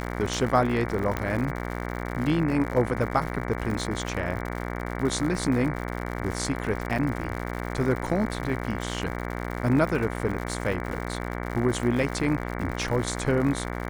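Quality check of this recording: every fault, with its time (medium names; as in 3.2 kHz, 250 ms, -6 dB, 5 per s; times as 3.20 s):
buzz 60 Hz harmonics 38 -32 dBFS
crackle 120 per s -32 dBFS
1.17 s: pop -14 dBFS
6.98–6.99 s: dropout 5.5 ms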